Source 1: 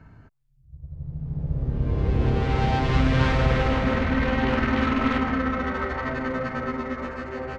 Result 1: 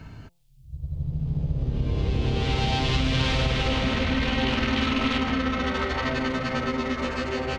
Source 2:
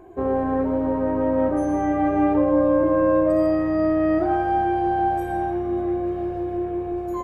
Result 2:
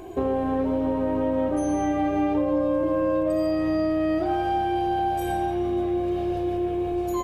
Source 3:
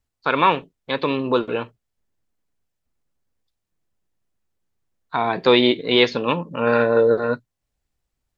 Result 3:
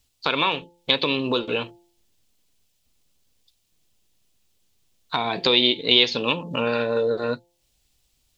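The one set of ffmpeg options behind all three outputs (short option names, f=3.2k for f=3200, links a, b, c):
-af "acompressor=threshold=-31dB:ratio=3,highshelf=f=2.3k:t=q:w=1.5:g=9,bandreject=f=173:t=h:w=4,bandreject=f=346:t=h:w=4,bandreject=f=519:t=h:w=4,bandreject=f=692:t=h:w=4,bandreject=f=865:t=h:w=4,volume=7dB"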